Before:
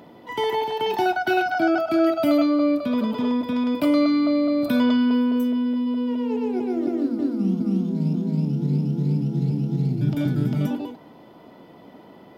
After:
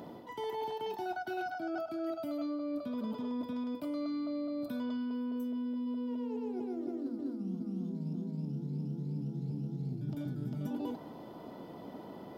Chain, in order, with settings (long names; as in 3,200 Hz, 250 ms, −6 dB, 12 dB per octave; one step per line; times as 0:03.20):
parametric band 2,300 Hz −7 dB 1.1 octaves
reversed playback
downward compressor 16 to 1, threshold −34 dBFS, peak gain reduction 19 dB
reversed playback